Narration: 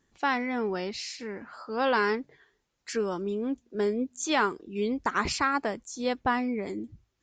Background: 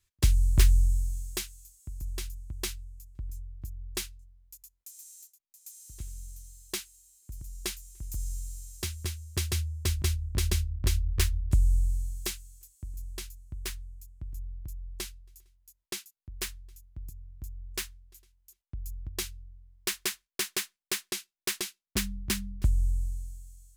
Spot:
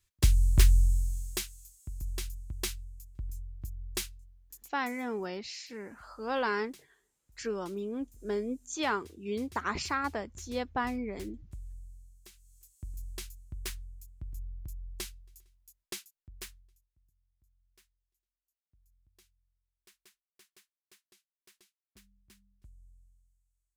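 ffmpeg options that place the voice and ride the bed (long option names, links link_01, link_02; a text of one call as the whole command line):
ffmpeg -i stem1.wav -i stem2.wav -filter_complex "[0:a]adelay=4500,volume=-5.5dB[link_01];[1:a]volume=19dB,afade=type=out:start_time=4.73:duration=0.35:silence=0.0891251,afade=type=in:start_time=12.32:duration=0.51:silence=0.105925,afade=type=out:start_time=15.75:duration=1.15:silence=0.0354813[link_02];[link_01][link_02]amix=inputs=2:normalize=0" out.wav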